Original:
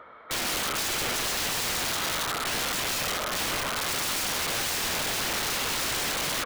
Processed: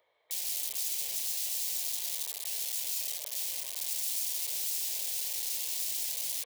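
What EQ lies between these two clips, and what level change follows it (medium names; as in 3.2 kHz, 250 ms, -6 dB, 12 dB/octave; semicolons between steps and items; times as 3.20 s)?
high-pass 99 Hz 6 dB/octave; pre-emphasis filter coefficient 0.9; static phaser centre 560 Hz, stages 4; -3.0 dB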